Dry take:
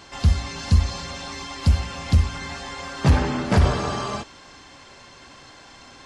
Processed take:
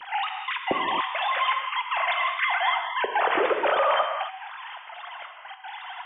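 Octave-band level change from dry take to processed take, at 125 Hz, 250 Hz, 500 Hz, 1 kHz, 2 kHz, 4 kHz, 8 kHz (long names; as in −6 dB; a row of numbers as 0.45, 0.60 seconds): below −35 dB, −12.5 dB, +3.5 dB, +7.5 dB, +7.5 dB, +2.0 dB, below −40 dB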